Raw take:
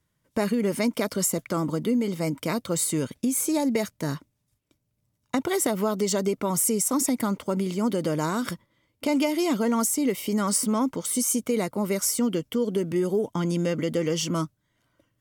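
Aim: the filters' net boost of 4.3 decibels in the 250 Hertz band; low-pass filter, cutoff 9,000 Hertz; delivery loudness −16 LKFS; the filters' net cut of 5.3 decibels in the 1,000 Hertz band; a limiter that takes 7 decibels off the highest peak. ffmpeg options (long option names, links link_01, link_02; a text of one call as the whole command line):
ffmpeg -i in.wav -af "lowpass=9000,equalizer=frequency=250:width_type=o:gain=5.5,equalizer=frequency=1000:width_type=o:gain=-7,volume=9.5dB,alimiter=limit=-7dB:level=0:latency=1" out.wav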